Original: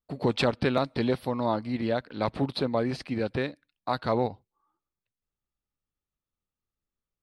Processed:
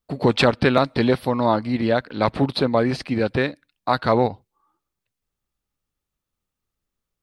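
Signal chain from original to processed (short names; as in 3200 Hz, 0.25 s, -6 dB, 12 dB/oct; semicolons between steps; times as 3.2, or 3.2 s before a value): dynamic EQ 1600 Hz, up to +3 dB, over -38 dBFS, Q 1.2; gain +7.5 dB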